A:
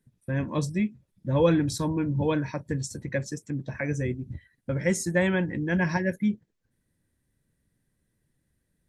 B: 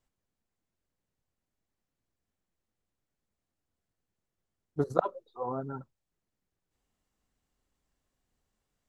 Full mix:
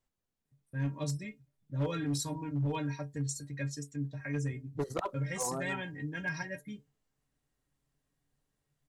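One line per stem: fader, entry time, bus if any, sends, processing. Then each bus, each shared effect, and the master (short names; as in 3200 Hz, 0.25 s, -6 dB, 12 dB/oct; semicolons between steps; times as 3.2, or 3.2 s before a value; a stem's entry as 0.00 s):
-1.5 dB, 0.45 s, no send, metallic resonator 140 Hz, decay 0.2 s, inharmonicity 0.008
-3.0 dB, 0.00 s, no send, dry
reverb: off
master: high shelf 2500 Hz +9.5 dB; hard clip -26.5 dBFS, distortion -13 dB; mismatched tape noise reduction decoder only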